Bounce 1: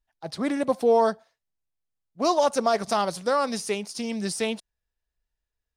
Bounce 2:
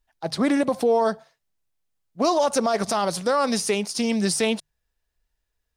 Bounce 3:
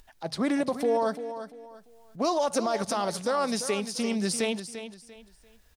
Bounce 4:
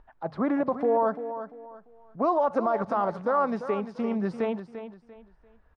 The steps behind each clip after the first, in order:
notches 50/100/150 Hz; limiter -19.5 dBFS, peak gain reduction 9 dB; gain +7 dB
upward compressor, threshold -34 dBFS; feedback echo 0.344 s, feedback 29%, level -11 dB; gain -5.5 dB
synth low-pass 1200 Hz, resonance Q 1.6

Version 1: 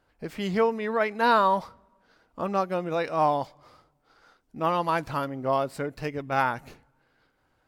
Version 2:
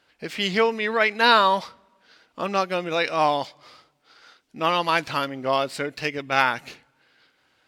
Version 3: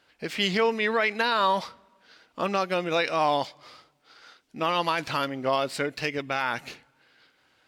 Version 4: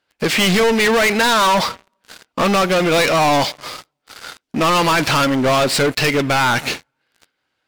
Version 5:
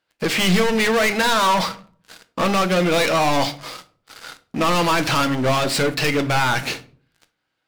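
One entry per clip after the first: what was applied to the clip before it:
weighting filter D; gain +2.5 dB
limiter -13.5 dBFS, peak gain reduction 10.5 dB
sample leveller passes 5; gain +2 dB
reverb RT60 0.45 s, pre-delay 6 ms, DRR 9.5 dB; gain -4 dB

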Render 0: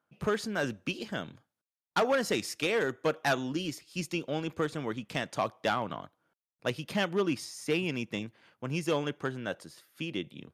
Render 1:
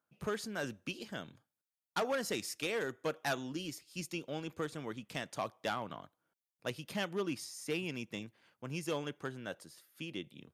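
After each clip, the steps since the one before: high shelf 6500 Hz +8 dB; gain -7.5 dB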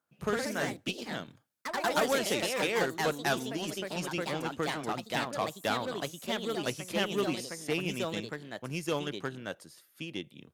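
added harmonics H 7 -27 dB, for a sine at -21 dBFS; echoes that change speed 88 ms, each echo +2 st, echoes 3; gain +5.5 dB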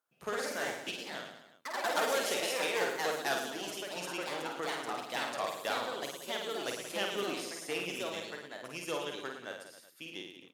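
tone controls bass -15 dB, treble +1 dB; reverse bouncing-ball echo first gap 50 ms, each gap 1.2×, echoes 5; gain -4 dB

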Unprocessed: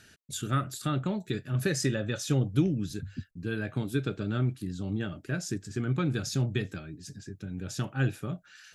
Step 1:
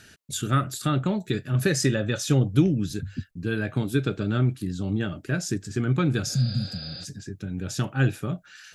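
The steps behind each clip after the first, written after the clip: spectral repair 6.31–7.02, 240–5000 Hz before; gain +5.5 dB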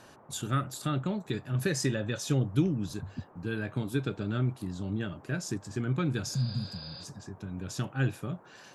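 band noise 100–1100 Hz -50 dBFS; gain -6.5 dB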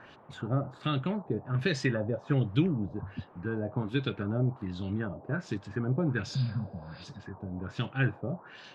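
LFO low-pass sine 1.3 Hz 650–3700 Hz

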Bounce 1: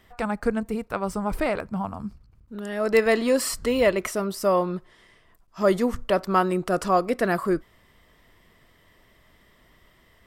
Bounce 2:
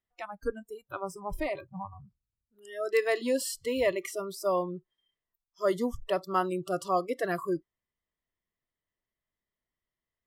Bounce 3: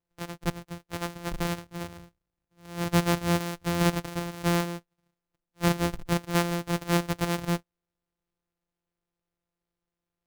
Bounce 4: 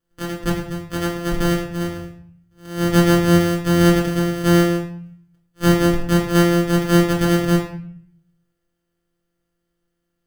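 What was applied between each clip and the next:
spectral noise reduction 28 dB; gain -6.5 dB
sample sorter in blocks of 256 samples; gain +2.5 dB
in parallel at -3.5 dB: soft clip -23 dBFS, distortion -12 dB; on the sum: reverb RT60 0.60 s, pre-delay 3 ms, DRR -2.5 dB

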